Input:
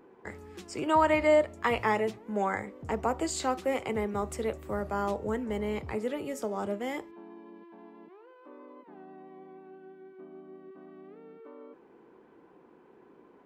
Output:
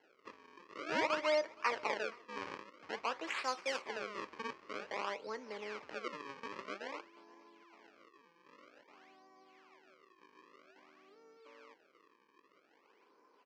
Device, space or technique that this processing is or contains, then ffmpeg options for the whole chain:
circuit-bent sampling toy: -filter_complex "[0:a]bandreject=f=370:w=12,acrusher=samples=36:mix=1:aa=0.000001:lfo=1:lforange=57.6:lforate=0.51,highpass=520,equalizer=f=720:t=q:w=4:g=-6,equalizer=f=1.1k:t=q:w=4:g=5,equalizer=f=2.3k:t=q:w=4:g=4,equalizer=f=3.7k:t=q:w=4:g=-8,lowpass=f=5k:w=0.5412,lowpass=f=5k:w=1.3066,asettb=1/sr,asplit=3[a][b][c];[a]atrim=end=3.274[d];[b]atrim=start=3.27:end=3.82,asetpts=PTS-STARTPTS,afade=t=in:d=0.004:c=qsin,afade=t=out:st=0.546:d=0.004:c=qsin,aemphasis=mode=production:type=75fm[e];[c]atrim=start=3.816[f];[d][e]acrossfade=d=0.004:c1=hsin:c2=qsin[g];[g][f]acrossfade=d=0.004:c1=qsin:c2=hsin,aecho=1:1:470:0.0631,volume=-6dB"

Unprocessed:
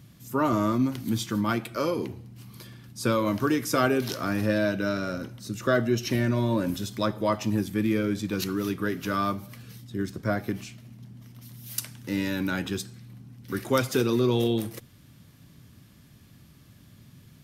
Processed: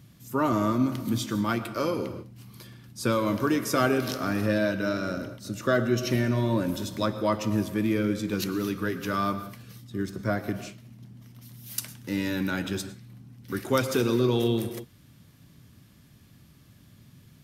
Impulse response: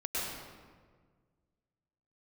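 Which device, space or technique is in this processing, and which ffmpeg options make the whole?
keyed gated reverb: -filter_complex "[0:a]asplit=3[a][b][c];[1:a]atrim=start_sample=2205[d];[b][d]afir=irnorm=-1:irlink=0[e];[c]apad=whole_len=768888[f];[e][f]sidechaingate=range=-33dB:threshold=-41dB:ratio=16:detection=peak,volume=-15.5dB[g];[a][g]amix=inputs=2:normalize=0,volume=-1.5dB"

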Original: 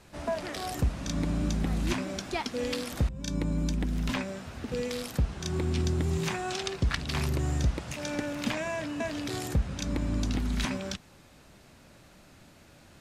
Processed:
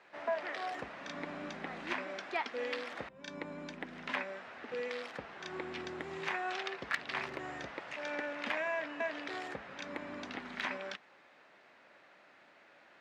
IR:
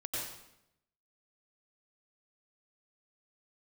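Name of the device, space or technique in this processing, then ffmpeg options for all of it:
megaphone: -af "highpass=530,lowpass=2.6k,equalizer=f=1.9k:t=o:w=0.54:g=5,asoftclip=type=hard:threshold=-21.5dB,volume=-1.5dB"

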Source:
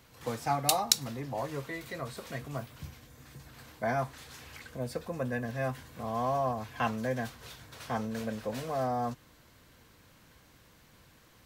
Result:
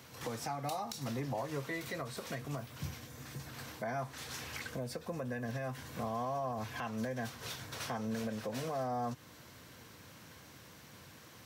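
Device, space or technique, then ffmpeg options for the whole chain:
broadcast voice chain: -af "highpass=f=81:w=0.5412,highpass=f=81:w=1.3066,deesser=0.6,acompressor=threshold=-34dB:ratio=4,equalizer=f=5.7k:t=o:w=0.22:g=4,alimiter=level_in=9.5dB:limit=-24dB:level=0:latency=1:release=325,volume=-9.5dB,volume=5dB"

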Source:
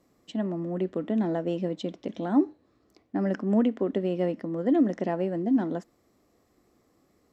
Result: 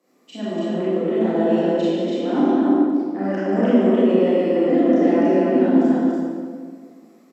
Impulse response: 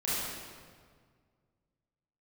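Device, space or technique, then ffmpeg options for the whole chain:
stadium PA: -filter_complex "[0:a]highpass=f=230:w=0.5412,highpass=f=230:w=1.3066,equalizer=f=2.4k:t=o:w=0.25:g=3.5,aecho=1:1:145.8|288.6:0.355|0.794[a];[1:a]atrim=start_sample=2205[b];[a][b]afir=irnorm=-1:irlink=0"

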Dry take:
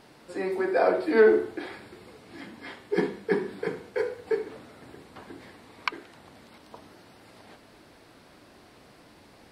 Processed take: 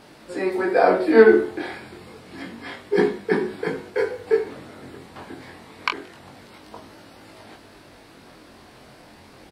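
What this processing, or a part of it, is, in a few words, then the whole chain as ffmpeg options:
double-tracked vocal: -filter_complex "[0:a]asplit=2[a][b];[b]adelay=22,volume=-11dB[c];[a][c]amix=inputs=2:normalize=0,flanger=delay=18.5:depth=4.8:speed=0.28,volume=9dB"

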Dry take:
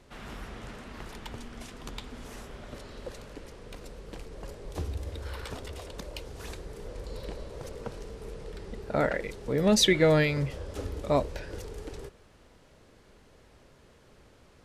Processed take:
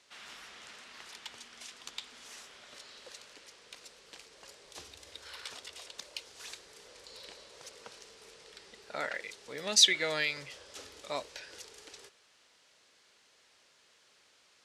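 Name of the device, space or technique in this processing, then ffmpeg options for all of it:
piezo pickup straight into a mixer: -af "lowpass=5.5k,aderivative,volume=9dB"

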